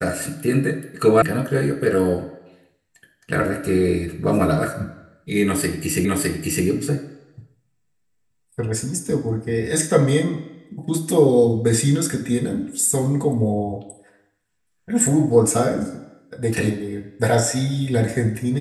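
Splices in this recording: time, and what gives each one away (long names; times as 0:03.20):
0:01.22: cut off before it has died away
0:06.05: the same again, the last 0.61 s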